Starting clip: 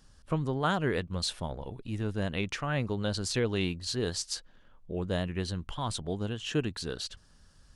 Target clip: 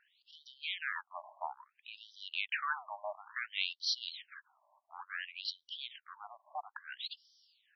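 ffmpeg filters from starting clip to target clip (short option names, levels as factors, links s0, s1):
-af "aeval=exprs='clip(val(0),-1,0.0251)':c=same,afftfilt=real='re*between(b*sr/1024,790*pow(4300/790,0.5+0.5*sin(2*PI*0.58*pts/sr))/1.41,790*pow(4300/790,0.5+0.5*sin(2*PI*0.58*pts/sr))*1.41)':imag='im*between(b*sr/1024,790*pow(4300/790,0.5+0.5*sin(2*PI*0.58*pts/sr))/1.41,790*pow(4300/790,0.5+0.5*sin(2*PI*0.58*pts/sr))*1.41)':win_size=1024:overlap=0.75,volume=1.5"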